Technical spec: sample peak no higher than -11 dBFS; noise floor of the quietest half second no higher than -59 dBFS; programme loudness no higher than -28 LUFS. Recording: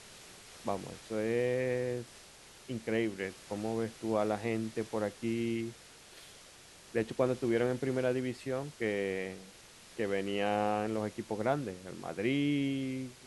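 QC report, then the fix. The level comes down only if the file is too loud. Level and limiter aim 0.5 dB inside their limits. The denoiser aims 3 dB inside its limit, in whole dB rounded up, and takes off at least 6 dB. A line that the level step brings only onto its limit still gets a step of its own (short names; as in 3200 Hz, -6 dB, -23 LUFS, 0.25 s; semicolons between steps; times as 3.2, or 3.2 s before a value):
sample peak -15.5 dBFS: OK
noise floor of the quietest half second -55 dBFS: fail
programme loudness -34.5 LUFS: OK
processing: denoiser 7 dB, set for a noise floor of -55 dBFS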